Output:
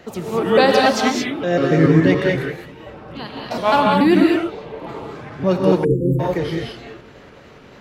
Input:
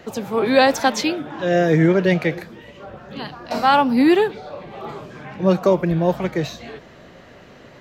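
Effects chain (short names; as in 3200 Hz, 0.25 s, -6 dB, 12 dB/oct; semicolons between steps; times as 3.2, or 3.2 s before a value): trilling pitch shifter -4 st, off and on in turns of 0.143 s; non-linear reverb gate 0.24 s rising, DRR -0.5 dB; spectral delete 5.84–6.19, 530–6900 Hz; gain -1 dB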